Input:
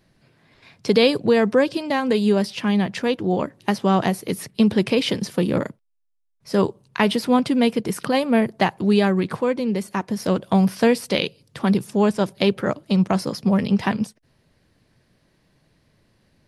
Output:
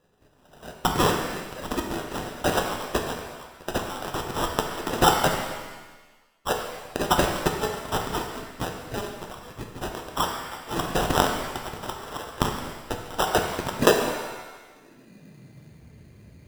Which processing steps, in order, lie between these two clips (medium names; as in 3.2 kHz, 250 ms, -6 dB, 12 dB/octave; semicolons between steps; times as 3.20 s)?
resonances exaggerated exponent 1.5; in parallel at -1 dB: compression, threshold -25 dBFS, peak gain reduction 12.5 dB; on the sum: dynamic bell 3.8 kHz, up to -5 dB, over -46 dBFS, Q 6.7; high-pass sweep 4 kHz -> 65 Hz, 13.32–15.84 s; sample-and-hold 20×; pitch-shifted reverb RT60 1.2 s, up +7 st, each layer -8 dB, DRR 3 dB; trim +3.5 dB